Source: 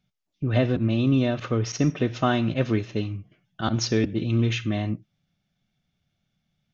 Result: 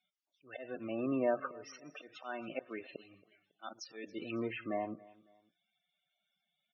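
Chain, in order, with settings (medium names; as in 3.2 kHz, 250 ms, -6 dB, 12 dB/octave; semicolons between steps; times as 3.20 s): slow attack 476 ms; high-pass 580 Hz 12 dB/octave; low-pass that closes with the level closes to 1.3 kHz, closed at -35 dBFS; loudest bins only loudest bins 32; on a send: feedback delay 276 ms, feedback 35%, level -22 dB; on the sum: trim +1 dB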